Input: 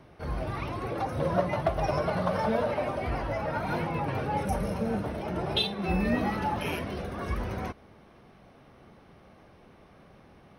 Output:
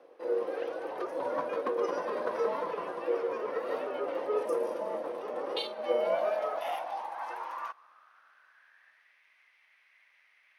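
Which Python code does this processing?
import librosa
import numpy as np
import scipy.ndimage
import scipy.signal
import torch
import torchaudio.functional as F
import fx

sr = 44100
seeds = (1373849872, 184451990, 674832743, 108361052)

y = x * np.sin(2.0 * np.pi * 420.0 * np.arange(len(x)) / sr)
y = fx.filter_sweep_highpass(y, sr, from_hz=450.0, to_hz=2100.0, start_s=5.65, end_s=9.24, q=6.3)
y = y * librosa.db_to_amplitude(-6.0)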